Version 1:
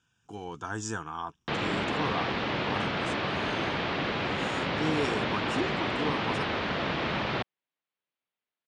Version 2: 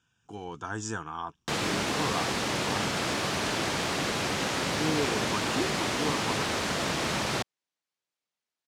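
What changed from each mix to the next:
background: remove LPF 3600 Hz 24 dB/oct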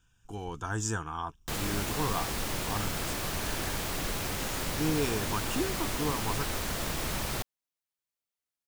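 background -6.5 dB; master: remove BPF 140–6300 Hz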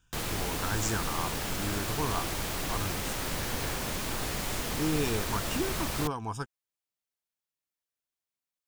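background: entry -1.35 s

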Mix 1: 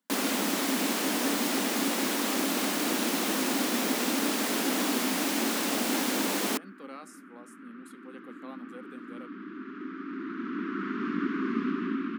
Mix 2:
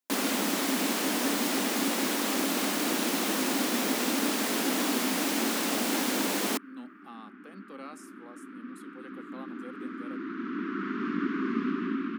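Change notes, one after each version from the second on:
speech: entry +0.90 s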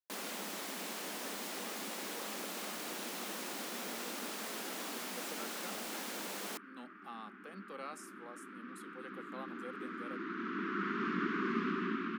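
first sound -12.0 dB; master: add bell 270 Hz -11 dB 0.48 oct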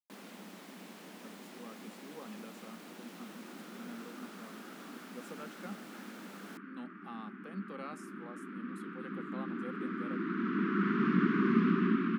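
first sound -9.0 dB; second sound: send +9.5 dB; master: add tone controls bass +14 dB, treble -6 dB

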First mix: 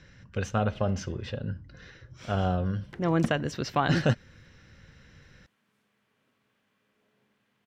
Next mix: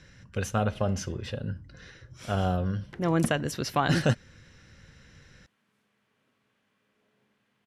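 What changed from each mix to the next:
speech: remove running mean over 4 samples; master: add brick-wall FIR low-pass 13000 Hz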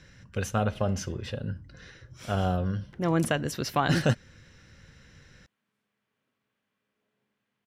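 background -8.0 dB; master: remove brick-wall FIR low-pass 13000 Hz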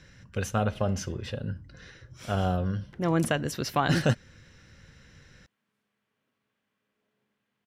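reverb: on, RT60 0.50 s

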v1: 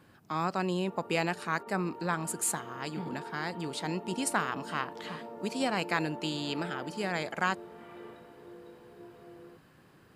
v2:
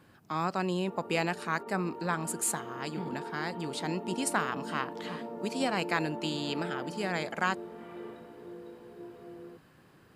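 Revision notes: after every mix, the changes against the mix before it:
background: add low shelf 370 Hz +9 dB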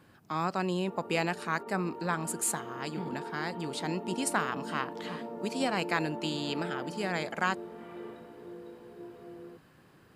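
none

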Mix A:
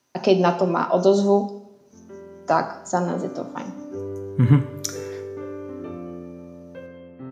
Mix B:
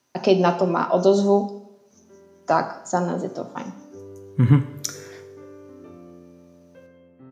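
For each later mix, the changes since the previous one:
background -9.5 dB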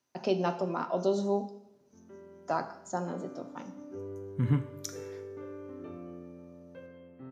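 speech -11.5 dB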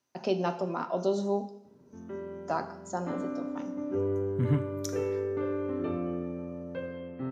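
background +11.5 dB

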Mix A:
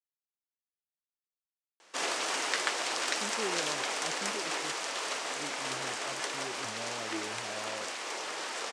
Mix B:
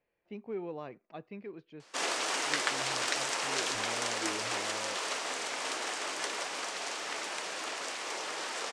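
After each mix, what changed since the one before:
speech: entry -2.90 s; master: remove HPF 81 Hz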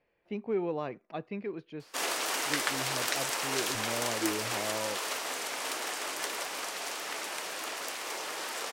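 speech +7.0 dB; master: remove LPF 8600 Hz 24 dB/oct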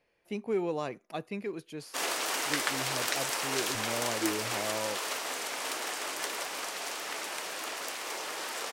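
speech: remove air absorption 260 m

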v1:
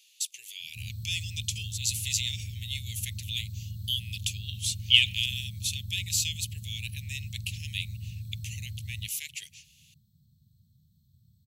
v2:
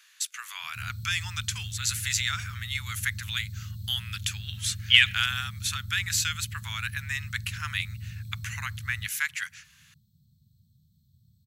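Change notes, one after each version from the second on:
master: remove elliptic band-stop 510–2700 Hz, stop band 60 dB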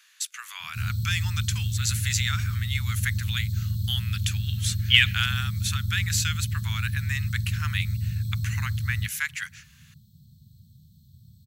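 background +10.5 dB

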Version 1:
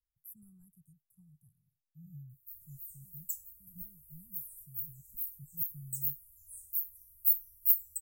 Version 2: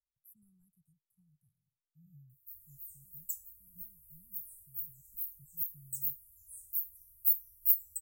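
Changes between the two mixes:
speech -9.0 dB; reverb: off

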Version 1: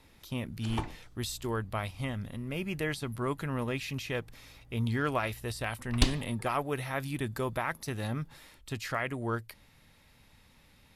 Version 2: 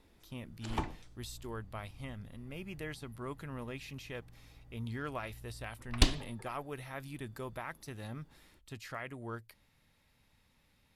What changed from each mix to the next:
speech -9.5 dB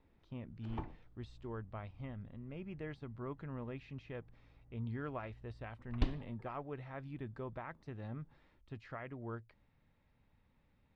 background -6.0 dB; master: add tape spacing loss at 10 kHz 38 dB

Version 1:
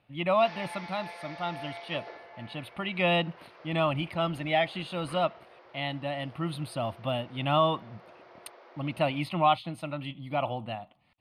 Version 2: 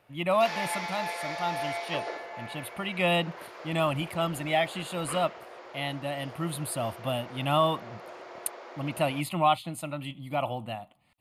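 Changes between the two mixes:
background +8.5 dB; master: remove polynomial smoothing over 15 samples

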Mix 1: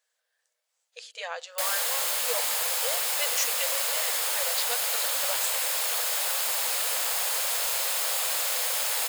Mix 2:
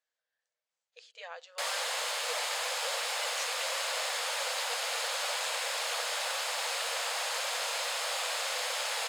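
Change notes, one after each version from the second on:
speech -8.5 dB; master: add air absorption 77 m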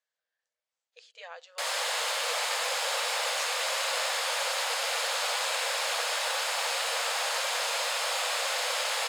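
background: send +9.0 dB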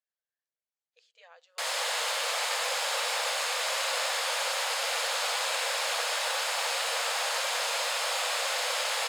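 speech -10.5 dB

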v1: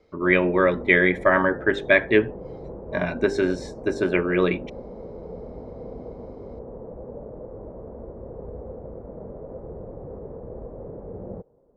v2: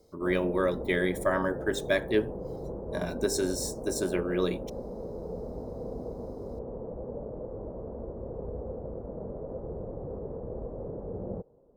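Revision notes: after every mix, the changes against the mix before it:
speech -7.0 dB; master: remove synth low-pass 2300 Hz, resonance Q 2.6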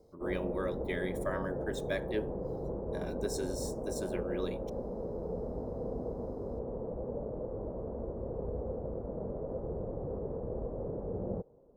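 speech -10.0 dB; reverb: on, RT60 1.5 s

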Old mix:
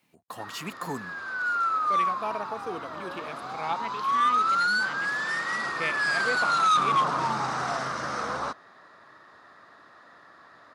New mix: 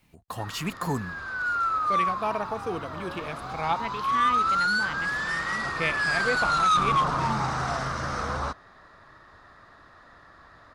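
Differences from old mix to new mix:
speech +3.5 dB; master: remove HPF 210 Hz 12 dB/oct

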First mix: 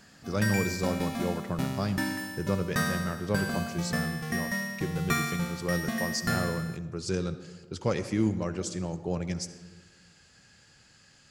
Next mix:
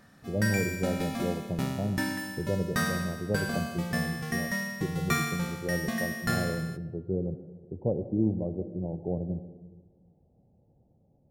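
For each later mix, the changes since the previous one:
speech: add steep low-pass 750 Hz 48 dB/oct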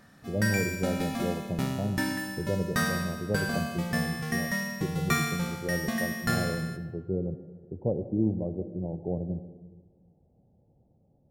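background: send +9.5 dB

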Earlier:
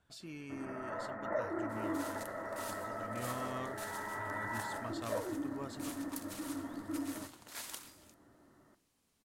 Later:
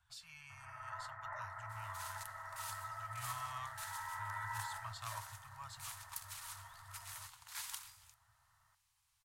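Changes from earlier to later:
first sound: send off; master: add elliptic band-stop 110–900 Hz, stop band 80 dB

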